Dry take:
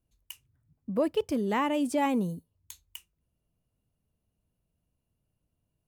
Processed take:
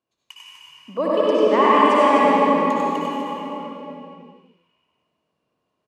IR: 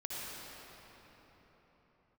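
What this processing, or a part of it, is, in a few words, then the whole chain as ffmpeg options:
station announcement: -filter_complex "[0:a]highpass=350,lowpass=4.8k,equalizer=f=1.1k:t=o:w=0.24:g=9,aecho=1:1:96.21|247.8:0.708|0.447[a];[1:a]atrim=start_sample=2205[b];[a][b]afir=irnorm=-1:irlink=0,volume=9dB"

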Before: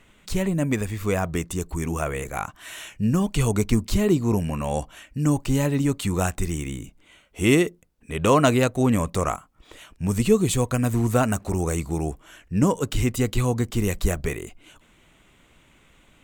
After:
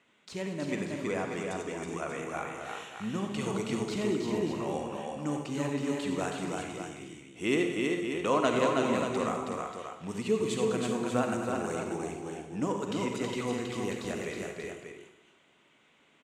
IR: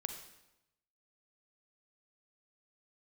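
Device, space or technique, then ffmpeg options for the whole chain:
supermarket ceiling speaker: -filter_complex "[0:a]asettb=1/sr,asplit=3[a][b][c];[a]atrim=end=0.864[d];[b]atrim=start=0.86:end=2.09,asetpts=PTS-STARTPTS,afade=t=in:d=0.004:c=qsin,afade=t=out:st=1.226:d=0.004:c=qsin,lowpass=12k[e];[c]atrim=start=2.086[f];[d][e]acrossfade=d=0.004:c1=hsin:c2=qsin[g];[g][f]acrossfade=d=0.004:c1=qsin:c2=hsin,highpass=240,lowpass=6.2k[h];[1:a]atrim=start_sample=2205[i];[h][i]afir=irnorm=-1:irlink=0,aecho=1:1:91|204|322|374|586:0.282|0.211|0.668|0.299|0.398,volume=-7.5dB"

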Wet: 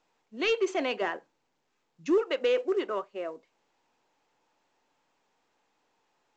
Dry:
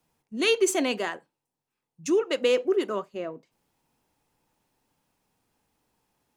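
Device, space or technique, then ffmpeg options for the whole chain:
telephone: -filter_complex "[0:a]asettb=1/sr,asplit=3[a][b][c];[a]atrim=end=1.014[d];[b]atrim=start=1.01:end=2.18,asetpts=PTS-STARTPTS,afade=t=in:d=0.004:c=qsin,afade=t=out:st=1.166:d=0.004:c=qsin,lowshelf=f=350:g=11[e];[c]atrim=start=2.176[f];[d][e]acrossfade=d=0.004:c1=hsin:c2=qsin[g];[g][f]acrossfade=d=0.004:c1=qsin:c2=hsin,highpass=390,lowpass=3k,asoftclip=type=tanh:threshold=-17.5dB" -ar 16000 -c:a pcm_mulaw

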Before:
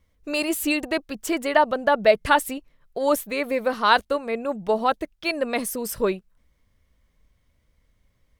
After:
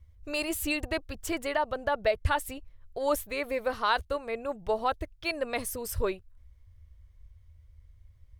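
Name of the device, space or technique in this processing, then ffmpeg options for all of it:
car stereo with a boomy subwoofer: -af "lowshelf=f=130:t=q:w=3:g=13.5,alimiter=limit=-10dB:level=0:latency=1:release=289,volume=-5.5dB"

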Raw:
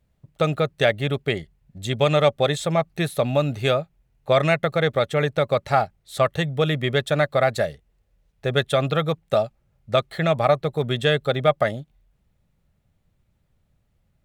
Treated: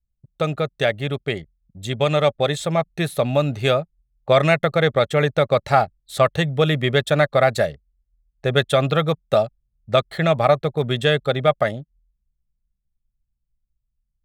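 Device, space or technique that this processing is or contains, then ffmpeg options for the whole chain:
voice memo with heavy noise removal: -af "anlmdn=0.0631,dynaudnorm=f=370:g=17:m=11.5dB,volume=-1dB"

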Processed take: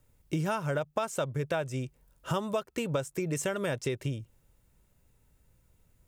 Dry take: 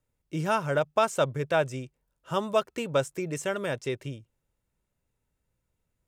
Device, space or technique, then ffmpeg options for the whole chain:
ASMR close-microphone chain: -af "lowshelf=f=160:g=6,acompressor=threshold=-38dB:ratio=6,highshelf=f=9.7k:g=7,volume=9dB"

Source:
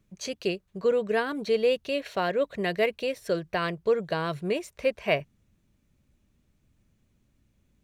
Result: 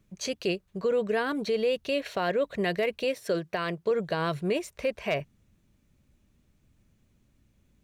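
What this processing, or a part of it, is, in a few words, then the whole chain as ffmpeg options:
clipper into limiter: -filter_complex "[0:a]asettb=1/sr,asplit=3[a][b][c];[a]atrim=end=3.044[d];[b]atrim=start=3.04:end=3.91,asetpts=PTS-STARTPTS,afade=t=in:d=0.004:c=qsin,afade=t=out:st=0.866:d=0.004:c=qsin,highpass=140[e];[c]atrim=start=3.906[f];[d][e]acrossfade=d=0.004:c1=hsin:c2=qsin[g];[g][f]acrossfade=d=0.004:c1=qsin:c2=hsin,asoftclip=type=hard:threshold=-14dB,alimiter=limit=-20.5dB:level=0:latency=1:release=39,volume=2dB"

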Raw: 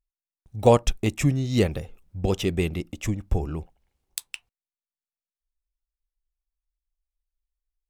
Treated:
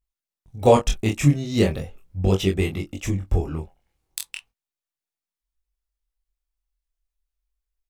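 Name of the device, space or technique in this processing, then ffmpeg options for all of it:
double-tracked vocal: -filter_complex "[0:a]asplit=2[a][b];[b]adelay=21,volume=-7dB[c];[a][c]amix=inputs=2:normalize=0,flanger=delay=20:depth=7.3:speed=0.37,volume=4.5dB"

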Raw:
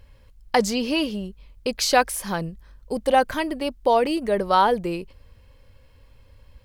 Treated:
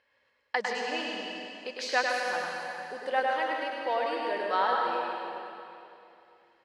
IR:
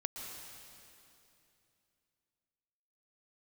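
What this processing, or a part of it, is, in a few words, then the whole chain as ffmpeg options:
station announcement: -filter_complex "[0:a]highpass=490,lowpass=4.7k,equalizer=f=1.8k:t=o:w=0.44:g=9,aecho=1:1:102|166.2:0.631|0.282[a];[1:a]atrim=start_sample=2205[b];[a][b]afir=irnorm=-1:irlink=0,volume=-8.5dB"

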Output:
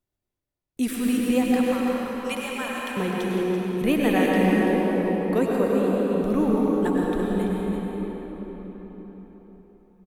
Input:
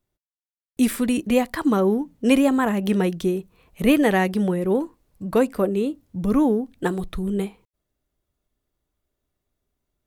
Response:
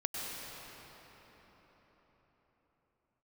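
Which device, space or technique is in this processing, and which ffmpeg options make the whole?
cave: -filter_complex "[0:a]asettb=1/sr,asplit=3[a][b][c];[a]atrim=end=1.444[d];[b]atrim=start=1.44:end=2.97,asetpts=PTS-STARTPTS,afade=t=in:d=0.004:c=qsin,afade=t=out:st=1.526:d=0.004:c=qsin,highpass=1.2k[e];[c]atrim=start=2.966[f];[d][e]acrossfade=d=0.004:c1=hsin:c2=qsin[g];[g][f]acrossfade=d=0.004:c1=qsin:c2=hsin,aecho=1:1:335:0.376[h];[1:a]atrim=start_sample=2205[i];[h][i]afir=irnorm=-1:irlink=0,volume=-5dB"

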